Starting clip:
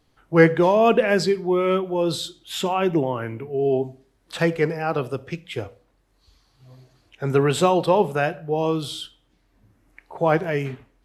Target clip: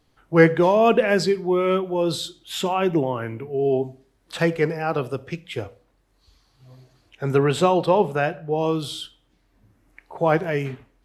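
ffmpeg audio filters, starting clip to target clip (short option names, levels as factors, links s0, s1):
-filter_complex "[0:a]asettb=1/sr,asplit=3[s0][s1][s2];[s0]atrim=end=7.384[s3];[s1]atrim=start=7.38:end=8.61,asetpts=PTS-STARTPTS,afade=t=in:d=0.004:c=qsin,afade=t=out:st=1.226:d=0.004:c=qsin,highshelf=f=6700:g=-7[s4];[s2]atrim=start=8.606[s5];[s3][s4]acrossfade=d=0.004:c1=hsin:c2=qsin[s6];[s6][s5]acrossfade=d=0.004:c1=qsin:c2=hsin"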